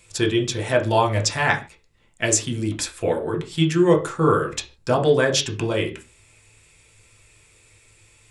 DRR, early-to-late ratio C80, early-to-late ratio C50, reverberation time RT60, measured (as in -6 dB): 2.5 dB, 19.0 dB, 13.5 dB, no single decay rate